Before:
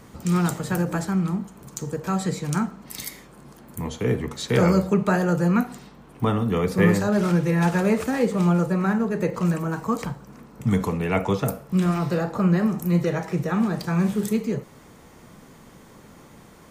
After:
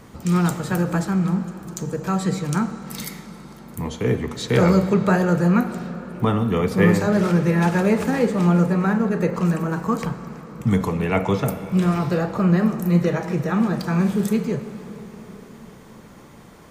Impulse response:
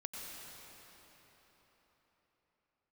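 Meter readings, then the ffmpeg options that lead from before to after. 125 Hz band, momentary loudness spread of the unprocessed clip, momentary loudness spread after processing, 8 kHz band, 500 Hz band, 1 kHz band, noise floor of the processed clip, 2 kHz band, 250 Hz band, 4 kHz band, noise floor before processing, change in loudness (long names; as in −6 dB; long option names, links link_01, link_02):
+2.5 dB, 11 LU, 14 LU, 0.0 dB, +2.5 dB, +2.5 dB, −44 dBFS, +2.5 dB, +2.5 dB, +2.0 dB, −49 dBFS, +2.5 dB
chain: -filter_complex "[0:a]asplit=2[link_01][link_02];[1:a]atrim=start_sample=2205,lowpass=6800[link_03];[link_02][link_03]afir=irnorm=-1:irlink=0,volume=-6.5dB[link_04];[link_01][link_04]amix=inputs=2:normalize=0"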